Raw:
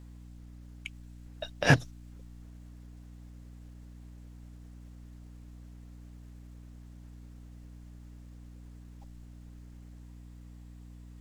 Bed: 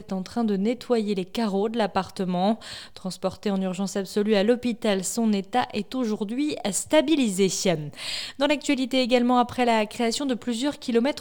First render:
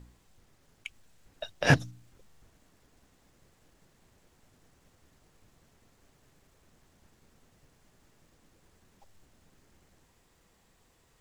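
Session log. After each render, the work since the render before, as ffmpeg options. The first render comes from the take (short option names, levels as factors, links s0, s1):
-af "bandreject=f=60:t=h:w=4,bandreject=f=120:t=h:w=4,bandreject=f=180:t=h:w=4,bandreject=f=240:t=h:w=4,bandreject=f=300:t=h:w=4"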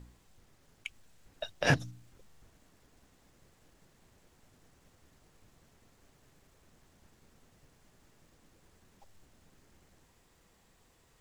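-af "alimiter=limit=0.2:level=0:latency=1:release=153"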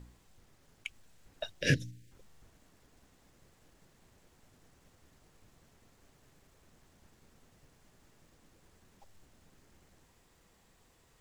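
-filter_complex "[0:a]asettb=1/sr,asplit=3[s0][s1][s2];[s0]atrim=end=1.614[s3];[s1]atrim=start=1.61:end=2.11,asetpts=PTS-STARTPTS,afade=t=in:d=0.004:c=qsin,afade=t=out:st=0.496:d=0.004:c=qsin,asuperstop=centerf=940:order=8:qfactor=0.83[s4];[s2]atrim=start=2.106[s5];[s3][s4]acrossfade=d=0.004:c1=hsin:c2=qsin[s6];[s6][s5]acrossfade=d=0.004:c1=qsin:c2=hsin"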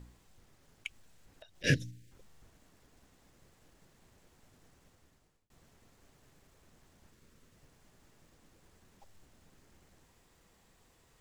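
-filter_complex "[0:a]asettb=1/sr,asplit=3[s0][s1][s2];[s0]atrim=end=0.874[s3];[s1]atrim=start=0.87:end=1.64,asetpts=PTS-STARTPTS,afade=t=in:d=0.004:c=qsin,afade=t=out:st=0.766:d=0.004:c=qsin,acompressor=threshold=0.00224:ratio=5:attack=3.2:release=140:knee=1:detection=peak[s4];[s2]atrim=start=1.636[s5];[s3][s4]acrossfade=d=0.004:c1=hsin:c2=qsin[s6];[s6][s5]acrossfade=d=0.004:c1=qsin:c2=hsin,asettb=1/sr,asplit=3[s7][s8][s9];[s7]atrim=end=7.114[s10];[s8]atrim=start=7.11:end=7.56,asetpts=PTS-STARTPTS,afade=t=in:d=0.004:c=qsin,afade=t=out:st=0.446:d=0.004:c=qsin,equalizer=f=770:t=o:w=0.31:g=-12.5[s11];[s9]atrim=start=7.556[s12];[s10][s11]acrossfade=d=0.004:c1=hsin:c2=qsin[s13];[s13][s12]acrossfade=d=0.004:c1=qsin:c2=hsin,asplit=2[s14][s15];[s14]atrim=end=5.5,asetpts=PTS-STARTPTS,afade=t=out:st=4.61:d=0.89:c=qsin[s16];[s15]atrim=start=5.5,asetpts=PTS-STARTPTS,afade=t=in:d=0.004:c=hsin[s17];[s16][s17]concat=n=2:v=0:a=1"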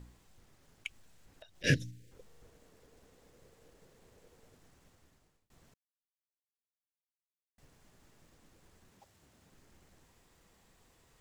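-filter_complex "[0:a]asettb=1/sr,asplit=3[s0][s1][s2];[s0]atrim=end=1.994[s3];[s1]atrim=start=1.99:end=4.55,asetpts=PTS-STARTPTS,afade=t=in:d=0.004:c=qsin,afade=t=out:st=2.556:d=0.004:c=qsin,equalizer=f=470:t=o:w=0.47:g=11.5[s4];[s2]atrim=start=4.546[s5];[s3][s4]acrossfade=d=0.004:c1=hsin:c2=qsin[s6];[s6][s5]acrossfade=d=0.004:c1=qsin:c2=hsin,asettb=1/sr,asplit=3[s7][s8][s9];[s7]atrim=end=8.894[s10];[s8]atrim=start=8.89:end=9.51,asetpts=PTS-STARTPTS,afade=t=in:d=0.004:c=qsin,afade=t=out:st=0.616:d=0.004:c=qsin,highpass=65[s11];[s9]atrim=start=9.506[s12];[s10][s11]acrossfade=d=0.004:c1=hsin:c2=qsin[s13];[s13][s12]acrossfade=d=0.004:c1=qsin:c2=hsin,asplit=3[s14][s15][s16];[s14]atrim=end=5.74,asetpts=PTS-STARTPTS,afade=t=out:st=5.736:d=0.004:c=hsin[s17];[s15]atrim=start=5.74:end=7.58,asetpts=PTS-STARTPTS,volume=0[s18];[s16]atrim=start=7.58,asetpts=PTS-STARTPTS,afade=t=in:d=0.004:c=hsin[s19];[s17][s18][s19]concat=n=3:v=0:a=1"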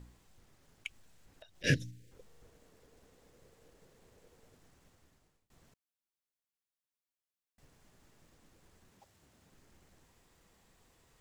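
-af "volume=0.891"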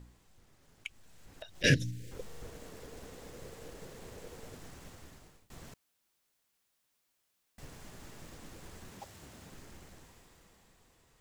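-af "alimiter=level_in=1.19:limit=0.0631:level=0:latency=1:release=330,volume=0.841,dynaudnorm=f=240:g=13:m=5.62"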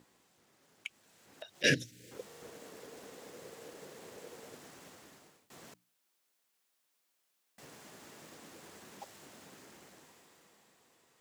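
-af "highpass=220,bandreject=f=60:t=h:w=6,bandreject=f=120:t=h:w=6,bandreject=f=180:t=h:w=6,bandreject=f=240:t=h:w=6,bandreject=f=300:t=h:w=6"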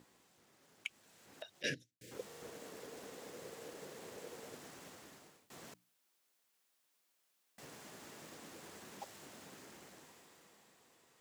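-filter_complex "[0:a]asplit=2[s0][s1];[s0]atrim=end=2.01,asetpts=PTS-STARTPTS,afade=t=out:st=1.38:d=0.63:c=qua[s2];[s1]atrim=start=2.01,asetpts=PTS-STARTPTS,afade=t=in:d=0.004:c=hsin[s3];[s2][s3]concat=n=2:v=0:a=1"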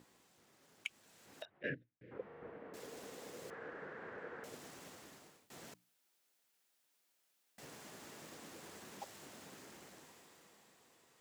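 -filter_complex "[0:a]asettb=1/sr,asplit=3[s0][s1][s2];[s0]atrim=end=1.454[s3];[s1]atrim=start=1.45:end=2.74,asetpts=PTS-STARTPTS,afade=t=in:d=0.004:c=qsin,afade=t=out:st=1.286:d=0.004:c=qsin,lowpass=f=2000:w=0.5412,lowpass=f=2000:w=1.3066[s4];[s2]atrim=start=2.736[s5];[s3][s4]acrossfade=d=0.004:c1=hsin:c2=qsin[s6];[s6][s5]acrossfade=d=0.004:c1=qsin:c2=hsin,asettb=1/sr,asplit=3[s7][s8][s9];[s7]atrim=end=3.504[s10];[s8]atrim=start=3.5:end=4.44,asetpts=PTS-STARTPTS,afade=t=in:d=0.004:c=qsin,afade=t=out:st=0.936:d=0.004:c=qsin,lowpass=f=1600:t=q:w=3.9[s11];[s9]atrim=start=4.436[s12];[s10][s11]acrossfade=d=0.004:c1=hsin:c2=qsin[s13];[s13][s12]acrossfade=d=0.004:c1=qsin:c2=hsin,asettb=1/sr,asplit=3[s14][s15][s16];[s14]atrim=end=5.474[s17];[s15]atrim=start=5.47:end=7.65,asetpts=PTS-STARTPTS,afade=t=in:d=0.004:c=qsin,afade=t=out:st=2.176:d=0.004:c=qsin,bandreject=f=1100:w=12[s18];[s16]atrim=start=7.646[s19];[s17][s18]acrossfade=d=0.004:c1=hsin:c2=qsin[s20];[s20][s19]acrossfade=d=0.004:c1=qsin:c2=hsin"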